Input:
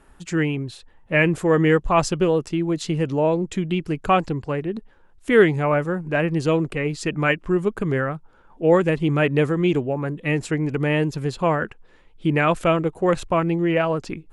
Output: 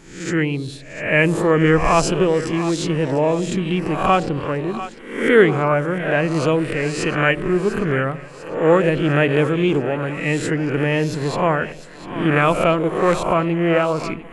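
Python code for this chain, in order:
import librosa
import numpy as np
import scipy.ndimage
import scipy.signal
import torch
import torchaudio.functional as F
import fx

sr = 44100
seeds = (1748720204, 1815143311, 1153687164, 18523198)

y = fx.spec_swells(x, sr, rise_s=0.63)
y = fx.echo_split(y, sr, split_hz=640.0, low_ms=82, high_ms=697, feedback_pct=52, wet_db=-12.5)
y = y * librosa.db_to_amplitude(1.0)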